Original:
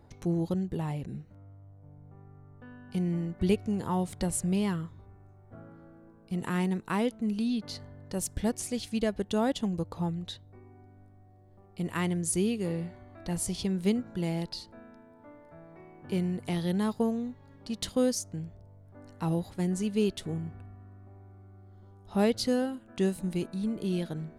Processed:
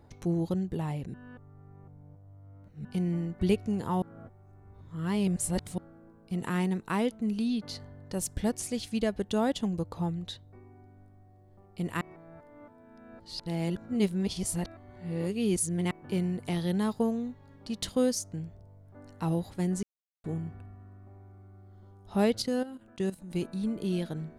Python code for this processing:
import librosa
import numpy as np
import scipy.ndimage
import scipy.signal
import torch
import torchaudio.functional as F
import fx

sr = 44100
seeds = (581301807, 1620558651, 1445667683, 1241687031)

y = fx.level_steps(x, sr, step_db=14, at=(22.42, 23.35))
y = fx.edit(y, sr, fx.reverse_span(start_s=1.14, length_s=1.71),
    fx.reverse_span(start_s=4.02, length_s=1.76),
    fx.reverse_span(start_s=12.01, length_s=3.9),
    fx.silence(start_s=19.83, length_s=0.41), tone=tone)